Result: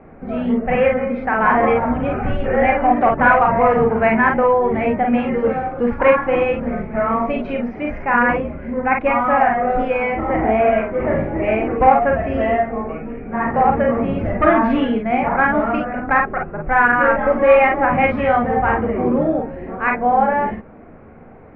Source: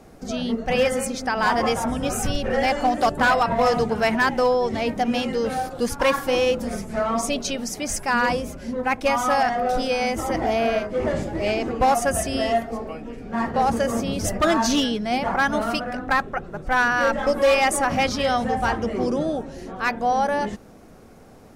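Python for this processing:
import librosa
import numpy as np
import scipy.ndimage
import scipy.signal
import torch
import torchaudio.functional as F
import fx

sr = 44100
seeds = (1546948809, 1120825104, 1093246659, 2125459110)

p1 = scipy.signal.sosfilt(scipy.signal.ellip(4, 1.0, 80, 2300.0, 'lowpass', fs=sr, output='sos'), x)
p2 = p1 + fx.room_early_taps(p1, sr, ms=(37, 50), db=(-6.0, -4.0), dry=0)
y = p2 * 10.0 ** (4.0 / 20.0)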